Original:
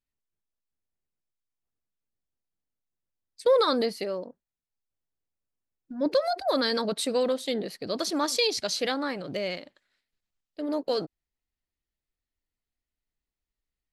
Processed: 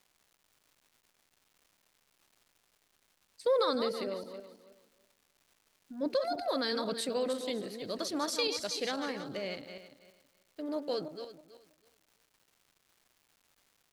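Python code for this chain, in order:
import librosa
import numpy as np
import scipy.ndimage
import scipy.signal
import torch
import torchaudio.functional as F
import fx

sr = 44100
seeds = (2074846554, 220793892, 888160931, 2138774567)

y = fx.reverse_delay_fb(x, sr, ms=163, feedback_pct=45, wet_db=-8.0)
y = fx.dmg_crackle(y, sr, seeds[0], per_s=450.0, level_db=-48.0)
y = y * librosa.db_to_amplitude(-7.0)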